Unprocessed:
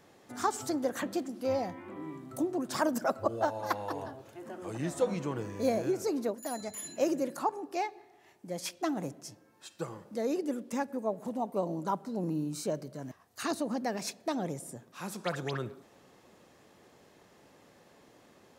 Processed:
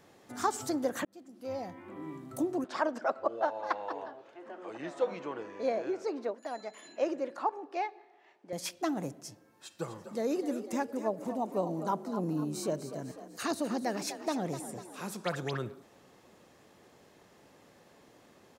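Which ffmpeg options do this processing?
ffmpeg -i in.wav -filter_complex "[0:a]asettb=1/sr,asplit=3[link_01][link_02][link_03];[link_01]atrim=end=2.644[link_04];[link_02]atrim=start=2.64:end=8.53,asetpts=PTS-STARTPTS,afade=type=in:duration=0.004:curve=qsin,afade=type=out:start_time=5.886:duration=0.004:curve=qsin,highpass=390,lowpass=3400[link_05];[link_03]atrim=start=8.526[link_06];[link_04][link_05]acrossfade=duration=0.004:curve1=hsin:curve2=qsin[link_07];[link_07][link_06]acrossfade=duration=0.004:curve1=qsin:curve2=hsin,asplit=3[link_08][link_09][link_10];[link_08]afade=type=out:start_time=9.81:duration=0.02[link_11];[link_09]asplit=6[link_12][link_13][link_14][link_15][link_16][link_17];[link_13]adelay=249,afreqshift=46,volume=-11dB[link_18];[link_14]adelay=498,afreqshift=92,volume=-17.2dB[link_19];[link_15]adelay=747,afreqshift=138,volume=-23.4dB[link_20];[link_16]adelay=996,afreqshift=184,volume=-29.6dB[link_21];[link_17]adelay=1245,afreqshift=230,volume=-35.8dB[link_22];[link_12][link_18][link_19][link_20][link_21][link_22]amix=inputs=6:normalize=0,afade=type=in:start_time=9.81:duration=0.02,afade=type=out:start_time=15.11:duration=0.02[link_23];[link_10]afade=type=in:start_time=15.11:duration=0.02[link_24];[link_11][link_23][link_24]amix=inputs=3:normalize=0,asplit=2[link_25][link_26];[link_25]atrim=end=1.05,asetpts=PTS-STARTPTS,afade=type=out:start_time=1.046:duration=0.004:curve=hsin[link_27];[link_26]atrim=start=1.05,asetpts=PTS-STARTPTS,afade=type=in:duration=1.08[link_28];[link_27][link_28]concat=n=2:v=0:a=1" out.wav

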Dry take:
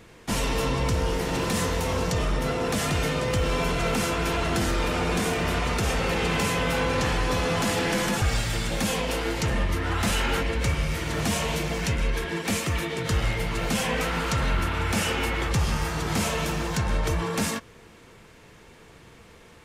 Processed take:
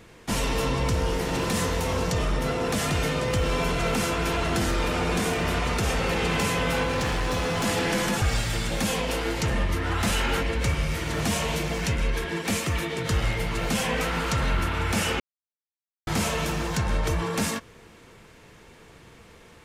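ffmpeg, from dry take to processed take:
ffmpeg -i in.wav -filter_complex "[0:a]asettb=1/sr,asplit=3[link_01][link_02][link_03];[link_01]atrim=end=6.834[link_04];[link_02]atrim=start=6.83:end=7.64,asetpts=PTS-STARTPTS,afade=type=in:duration=0.004:curve=qsin,afade=type=out:start_time=0.806:duration=0.004:curve=qsin,asoftclip=type=hard:threshold=-22dB[link_05];[link_03]atrim=start=7.636[link_06];[link_04][link_05]acrossfade=duration=0.004:curve1=hsin:curve2=qsin[link_07];[link_07][link_06]acrossfade=duration=0.004:curve1=qsin:curve2=hsin,asplit=3[link_08][link_09][link_10];[link_08]atrim=end=15.2,asetpts=PTS-STARTPTS,afade=type=out:start_time=15.196:duration=0.004:curve=hsin[link_11];[link_09]atrim=start=15.2:end=16.07,asetpts=PTS-STARTPTS,volume=0[link_12];[link_10]atrim=start=16.07,asetpts=PTS-STARTPTS,afade=type=in:duration=0.004:curve=hsin[link_13];[link_11][link_12][link_13]concat=n=3:v=0:a=1" out.wav

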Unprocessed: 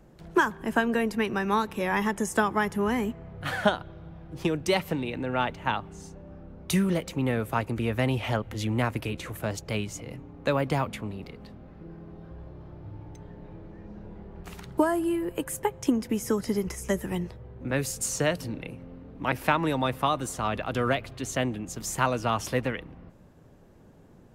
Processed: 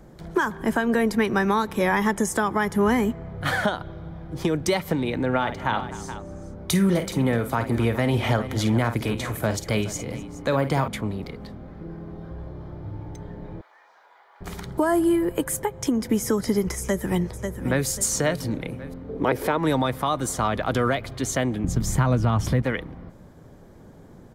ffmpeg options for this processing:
ffmpeg -i in.wav -filter_complex "[0:a]asettb=1/sr,asplit=3[link_01][link_02][link_03];[link_01]atrim=end=5.304[link_04];[link_02]atrim=start=5.3:end=10.88,asetpts=PTS-STARTPTS,afade=type=in:duration=0.004:curve=qsin,afade=type=out:start_time=5.576:duration=0.004:curve=qsin,aecho=1:1:51|252|419:0.282|0.1|0.15,atrim=end_sample=246078[link_05];[link_03]atrim=start=10.876[link_06];[link_04][link_05]acrossfade=duration=0.004:curve1=hsin:curve2=qsin[link_07];[link_07][link_06]acrossfade=duration=0.004:curve1=qsin:curve2=hsin,asettb=1/sr,asplit=3[link_08][link_09][link_10];[link_08]atrim=end=13.614[link_11];[link_09]atrim=start=13.61:end=14.41,asetpts=PTS-STARTPTS,afade=type=in:duration=0.004:curve=qsin,afade=type=out:start_time=0.796:duration=0.004:curve=qsin,highpass=frequency=910:width=0.5412,highpass=frequency=910:width=1.3066[link_12];[link_10]atrim=start=14.406[link_13];[link_11][link_12]acrossfade=duration=0.004:curve1=hsin:curve2=qsin[link_14];[link_14][link_13]acrossfade=duration=0.004:curve1=qsin:curve2=hsin,asplit=2[link_15][link_16];[link_16]afade=type=in:start_time=16.79:duration=0.01,afade=type=out:start_time=17.85:duration=0.01,aecho=0:1:540|1080|1620:0.298538|0.0895615|0.0268684[link_17];[link_15][link_17]amix=inputs=2:normalize=0,asettb=1/sr,asplit=3[link_18][link_19][link_20];[link_18]atrim=end=19.094[link_21];[link_19]atrim=start=19.09:end=19.58,asetpts=PTS-STARTPTS,afade=type=in:duration=0.004:curve=qsin,afade=type=out:start_time=0.486:duration=0.004:curve=qsin,equalizer=frequency=430:width=2:gain=15[link_22];[link_20]atrim=start=19.576[link_23];[link_21][link_22]acrossfade=duration=0.004:curve1=hsin:curve2=qsin[link_24];[link_24][link_23]acrossfade=duration=0.004:curve1=qsin:curve2=hsin,asettb=1/sr,asplit=3[link_25][link_26][link_27];[link_25]atrim=end=21.644[link_28];[link_26]atrim=start=21.64:end=22.62,asetpts=PTS-STARTPTS,afade=type=in:duration=0.004:curve=qsin,afade=type=out:start_time=0.976:duration=0.004:curve=qsin,bass=frequency=250:gain=14,treble=frequency=4000:gain=-5[link_29];[link_27]atrim=start=22.616[link_30];[link_28][link_29]acrossfade=duration=0.004:curve1=hsin:curve2=qsin[link_31];[link_31][link_30]acrossfade=duration=0.004:curve1=qsin:curve2=hsin,bandreject=frequency=2700:width=6,alimiter=limit=-19dB:level=0:latency=1:release=169,volume=7dB" out.wav

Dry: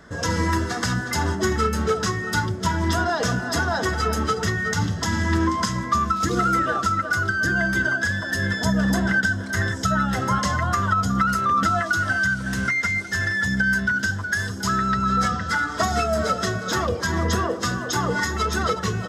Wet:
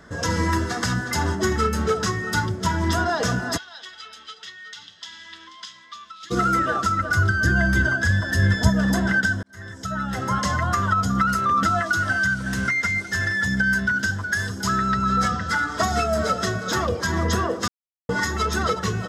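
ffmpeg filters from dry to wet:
ffmpeg -i in.wav -filter_complex "[0:a]asplit=3[link_01][link_02][link_03];[link_01]afade=type=out:start_time=3.56:duration=0.02[link_04];[link_02]bandpass=frequency=3400:width_type=q:width=3.7,afade=type=in:start_time=3.56:duration=0.02,afade=type=out:start_time=6.3:duration=0.02[link_05];[link_03]afade=type=in:start_time=6.3:duration=0.02[link_06];[link_04][link_05][link_06]amix=inputs=3:normalize=0,asettb=1/sr,asplit=3[link_07][link_08][link_09];[link_07]atrim=end=7.004[link_10];[link_08]atrim=start=7:end=8.69,asetpts=PTS-STARTPTS,afade=type=in:duration=0.004:curve=qsin,afade=type=out:start_time=1.686:duration=0.004:curve=qsin,equalizer=frequency=67:width=0.78:gain=13[link_11];[link_09]atrim=start=8.686[link_12];[link_10][link_11]acrossfade=duration=0.004:curve1=hsin:curve2=qsin[link_13];[link_13][link_12]acrossfade=duration=0.004:curve1=qsin:curve2=hsin,asplit=4[link_14][link_15][link_16][link_17];[link_14]atrim=end=9.43,asetpts=PTS-STARTPTS,afade=type=out:start_time=9.426:duration=0.004:curve=hsin[link_18];[link_15]atrim=start=9.43:end=17.68,asetpts=PTS-STARTPTS,afade=type=in:duration=1.09,afade=type=out:start_time=8.246:duration=0.004:curve=hsin[link_19];[link_16]atrim=start=17.68:end=18.09,asetpts=PTS-STARTPTS,volume=0[link_20];[link_17]atrim=start=18.09,asetpts=PTS-STARTPTS,afade=type=in:duration=0.004:curve=hsin[link_21];[link_18][link_19][link_20][link_21]concat=n=4:v=0:a=1" out.wav

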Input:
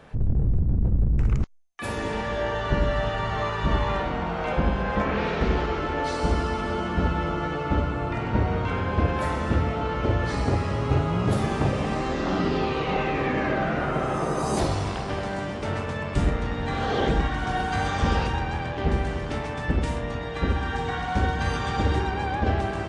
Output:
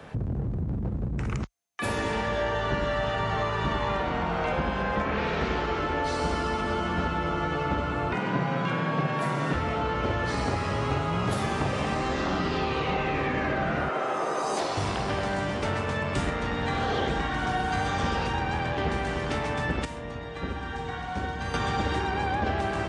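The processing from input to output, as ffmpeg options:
ffmpeg -i in.wav -filter_complex "[0:a]asettb=1/sr,asplit=3[link_01][link_02][link_03];[link_01]atrim=end=8.124[link_04];[link_02]atrim=start=8.12:end=9.53,asetpts=PTS-STARTPTS,afade=type=in:duration=0.004:curve=qsin,afade=type=out:start_time=1.406:duration=0.004:curve=qsin,afreqshift=74[link_05];[link_03]atrim=start=9.526[link_06];[link_04][link_05]acrossfade=duration=0.004:curve1=hsin:curve2=qsin[link_07];[link_07][link_06]acrossfade=duration=0.004:curve1=qsin:curve2=hsin,asettb=1/sr,asplit=3[link_08][link_09][link_10];[link_08]atrim=end=13.884[link_11];[link_09]atrim=start=13.88:end=14.77,asetpts=PTS-STARTPTS,afade=type=in:duration=0.004:curve=qsin,afade=type=out:start_time=0.886:duration=0.004:curve=qsin,highpass=420,lowpass=7500[link_12];[link_10]atrim=start=14.766[link_13];[link_11][link_12]acrossfade=duration=0.004:curve1=hsin:curve2=qsin[link_14];[link_14][link_13]acrossfade=duration=0.004:curve1=qsin:curve2=hsin,asplit=3[link_15][link_16][link_17];[link_15]atrim=end=19.852[link_18];[link_16]atrim=start=19.848:end=21.542,asetpts=PTS-STARTPTS,volume=-10dB[link_19];[link_17]atrim=start=21.538[link_20];[link_18][link_19]acrossfade=duration=0.004:curve1=hsin:curve2=hsin[link_21];[link_21][link_20]acrossfade=duration=0.004:curve1=hsin:curve2=hsin,highpass=frequency=44:width=0.5412,highpass=frequency=44:width=1.3066,acrossover=split=120|720[link_22][link_23][link_24];[link_22]acompressor=threshold=-40dB:ratio=4[link_25];[link_23]acompressor=threshold=-35dB:ratio=4[link_26];[link_24]acompressor=threshold=-34dB:ratio=4[link_27];[link_25][link_26][link_27]amix=inputs=3:normalize=0,volume=4.5dB" out.wav

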